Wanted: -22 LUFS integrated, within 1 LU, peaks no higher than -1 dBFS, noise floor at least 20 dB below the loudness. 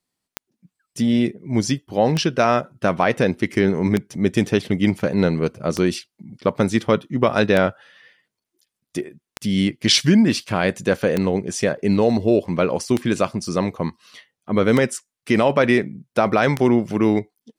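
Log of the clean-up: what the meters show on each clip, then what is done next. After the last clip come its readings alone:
clicks found 10; loudness -20.0 LUFS; peak level -3.5 dBFS; loudness target -22.0 LUFS
-> de-click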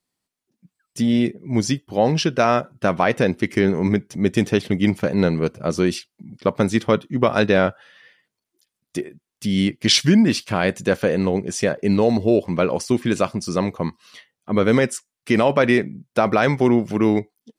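clicks found 0; loudness -20.0 LUFS; peak level -3.5 dBFS; loudness target -22.0 LUFS
-> trim -2 dB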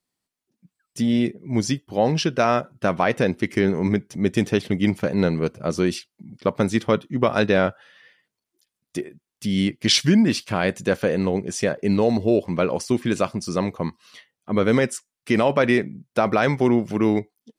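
loudness -22.0 LUFS; peak level -6.0 dBFS; noise floor -86 dBFS

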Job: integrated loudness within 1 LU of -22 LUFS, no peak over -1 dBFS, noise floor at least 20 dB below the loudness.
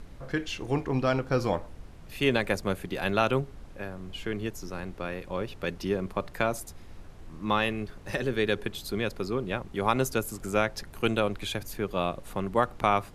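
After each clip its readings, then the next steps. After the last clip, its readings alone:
noise floor -47 dBFS; noise floor target -50 dBFS; loudness -30.0 LUFS; peak level -9.5 dBFS; loudness target -22.0 LUFS
-> noise print and reduce 6 dB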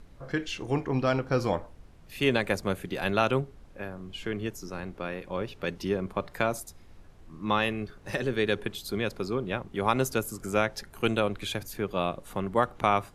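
noise floor -52 dBFS; loudness -30.0 LUFS; peak level -9.5 dBFS; loudness target -22.0 LUFS
-> trim +8 dB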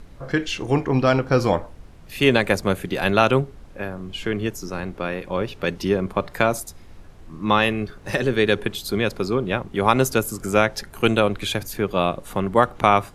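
loudness -22.0 LUFS; peak level -1.5 dBFS; noise floor -44 dBFS

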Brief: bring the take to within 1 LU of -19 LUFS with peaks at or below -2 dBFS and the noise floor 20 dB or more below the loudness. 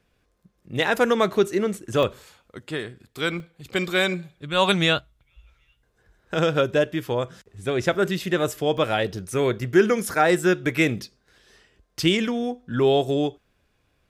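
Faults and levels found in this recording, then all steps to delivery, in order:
dropouts 3; longest dropout 1.2 ms; loudness -23.0 LUFS; peak level -6.5 dBFS; loudness target -19.0 LUFS
-> interpolate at 2.03/3.40/8.78 s, 1.2 ms; trim +4 dB

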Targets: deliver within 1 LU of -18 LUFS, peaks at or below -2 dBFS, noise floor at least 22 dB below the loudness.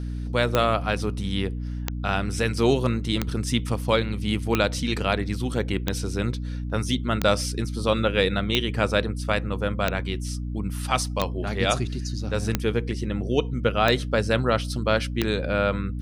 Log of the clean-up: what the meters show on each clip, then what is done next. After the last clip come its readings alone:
clicks found 12; hum 60 Hz; highest harmonic 300 Hz; hum level -28 dBFS; loudness -25.0 LUFS; peak level -5.5 dBFS; loudness target -18.0 LUFS
-> de-click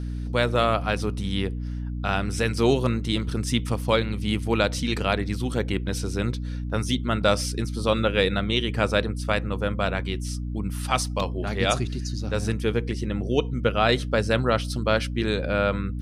clicks found 0; hum 60 Hz; highest harmonic 300 Hz; hum level -28 dBFS
-> hum notches 60/120/180/240/300 Hz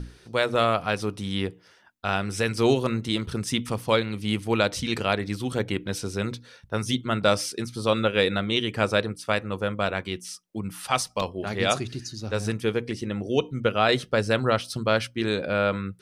hum not found; loudness -26.0 LUFS; peak level -7.5 dBFS; loudness target -18.0 LUFS
-> trim +8 dB; peak limiter -2 dBFS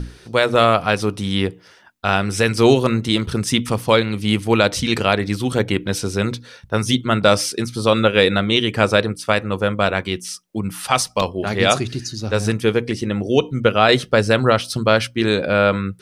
loudness -18.5 LUFS; peak level -2.0 dBFS; noise floor -48 dBFS

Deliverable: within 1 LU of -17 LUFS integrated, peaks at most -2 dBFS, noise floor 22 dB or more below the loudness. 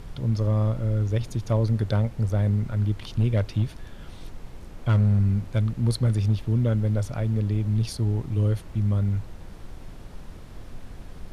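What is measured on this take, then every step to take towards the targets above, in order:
clipped samples 0.4%; clipping level -14.5 dBFS; noise floor -42 dBFS; noise floor target -47 dBFS; loudness -25.0 LUFS; peak level -14.5 dBFS; loudness target -17.0 LUFS
-> clip repair -14.5 dBFS; noise print and reduce 6 dB; trim +8 dB

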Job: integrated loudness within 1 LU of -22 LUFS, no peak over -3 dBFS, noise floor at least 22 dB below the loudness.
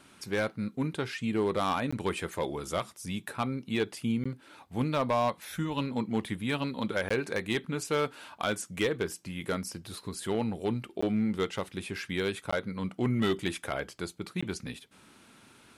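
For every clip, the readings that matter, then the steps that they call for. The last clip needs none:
clipped samples 0.4%; clipping level -21.0 dBFS; dropouts 6; longest dropout 15 ms; loudness -32.5 LUFS; peak level -21.0 dBFS; loudness target -22.0 LUFS
-> clip repair -21 dBFS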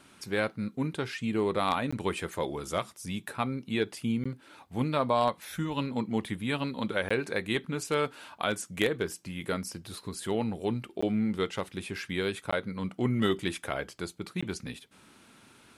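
clipped samples 0.0%; dropouts 6; longest dropout 15 ms
-> interpolate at 1.91/4.24/7.09/11.01/12.51/14.41 s, 15 ms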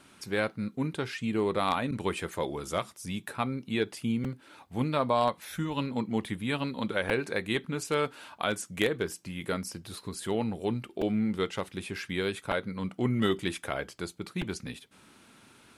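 dropouts 0; loudness -32.0 LUFS; peak level -12.0 dBFS; loudness target -22.0 LUFS
-> trim +10 dB; peak limiter -3 dBFS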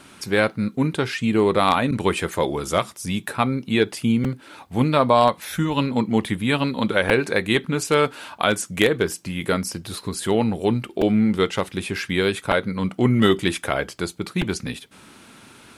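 loudness -22.0 LUFS; peak level -3.0 dBFS; noise floor -48 dBFS

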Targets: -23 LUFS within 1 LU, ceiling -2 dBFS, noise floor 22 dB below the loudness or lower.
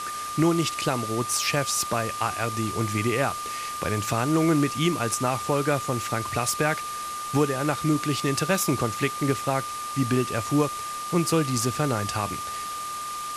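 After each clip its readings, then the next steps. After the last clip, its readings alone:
steady tone 1.2 kHz; tone level -31 dBFS; noise floor -33 dBFS; noise floor target -48 dBFS; loudness -25.5 LUFS; peak level -10.0 dBFS; loudness target -23.0 LUFS
-> band-stop 1.2 kHz, Q 30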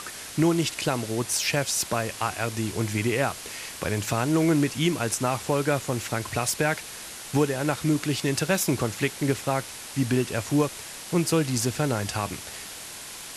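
steady tone not found; noise floor -40 dBFS; noise floor target -48 dBFS
-> noise reduction 8 dB, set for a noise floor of -40 dBFS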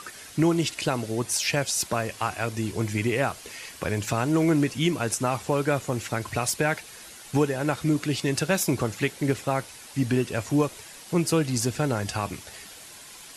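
noise floor -45 dBFS; noise floor target -48 dBFS
-> noise reduction 6 dB, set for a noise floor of -45 dBFS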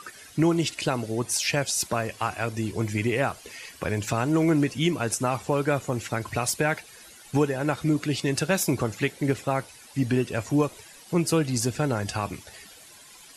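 noise floor -49 dBFS; loudness -26.5 LUFS; peak level -11.0 dBFS; loudness target -23.0 LUFS
-> trim +3.5 dB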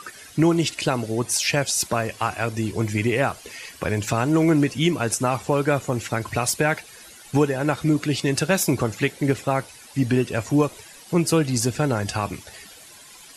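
loudness -23.0 LUFS; peak level -7.5 dBFS; noise floor -46 dBFS

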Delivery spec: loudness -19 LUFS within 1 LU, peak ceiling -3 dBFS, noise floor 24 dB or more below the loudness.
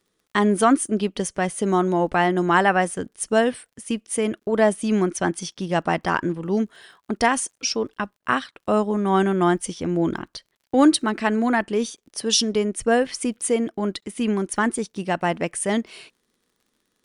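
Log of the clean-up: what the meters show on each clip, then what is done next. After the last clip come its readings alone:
tick rate 43 per s; loudness -22.5 LUFS; peak level -4.0 dBFS; loudness target -19.0 LUFS
-> de-click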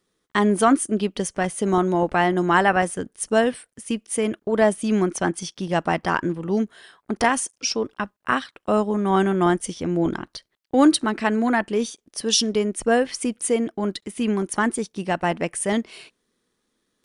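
tick rate 0.12 per s; loudness -22.5 LUFS; peak level -4.0 dBFS; loudness target -19.0 LUFS
-> trim +3.5 dB; peak limiter -3 dBFS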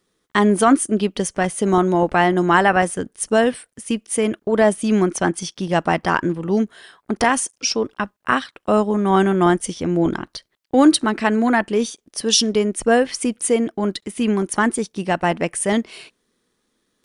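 loudness -19.0 LUFS; peak level -3.0 dBFS; noise floor -71 dBFS

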